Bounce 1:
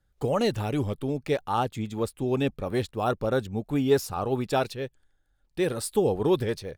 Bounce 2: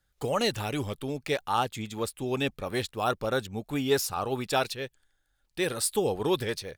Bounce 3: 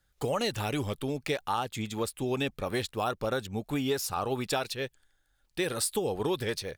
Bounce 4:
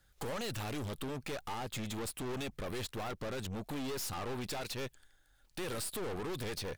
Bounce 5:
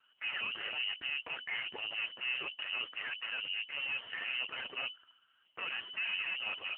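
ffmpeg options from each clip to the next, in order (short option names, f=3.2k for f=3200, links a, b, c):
-af "tiltshelf=f=970:g=-5.5"
-af "acompressor=threshold=-28dB:ratio=6,volume=2dB"
-af "alimiter=level_in=1dB:limit=-24dB:level=0:latency=1:release=71,volume=-1dB,aeval=exprs='(tanh(141*val(0)+0.5)-tanh(0.5))/141':c=same,volume=6dB"
-af "asuperstop=centerf=640:order=12:qfactor=2,lowpass=f=2.6k:t=q:w=0.5098,lowpass=f=2.6k:t=q:w=0.6013,lowpass=f=2.6k:t=q:w=0.9,lowpass=f=2.6k:t=q:w=2.563,afreqshift=-3000,volume=5.5dB" -ar 8000 -c:a libopencore_amrnb -b:a 5900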